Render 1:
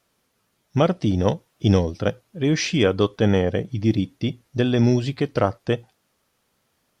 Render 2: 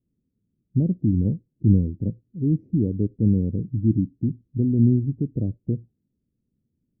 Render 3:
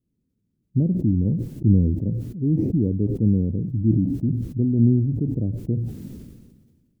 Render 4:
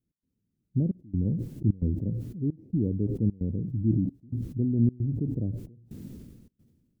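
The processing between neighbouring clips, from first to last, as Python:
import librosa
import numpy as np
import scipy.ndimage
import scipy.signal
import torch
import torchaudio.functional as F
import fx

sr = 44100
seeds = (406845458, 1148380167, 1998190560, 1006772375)

y1 = scipy.signal.sosfilt(scipy.signal.cheby2(4, 70, 1300.0, 'lowpass', fs=sr, output='sos'), x)
y1 = F.gain(torch.from_numpy(y1), 1.5).numpy()
y2 = fx.sustainer(y1, sr, db_per_s=38.0)
y3 = fx.step_gate(y2, sr, bpm=132, pattern='x.xxxxxx..xxxx', floor_db=-24.0, edge_ms=4.5)
y3 = F.gain(torch.from_numpy(y3), -5.5).numpy()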